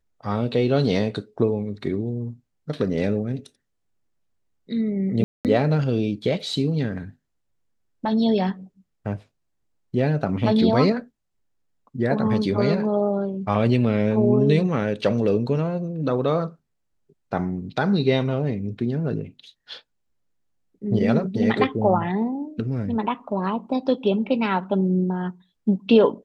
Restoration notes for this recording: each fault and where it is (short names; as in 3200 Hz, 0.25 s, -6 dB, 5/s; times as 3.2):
5.24–5.45 gap 0.208 s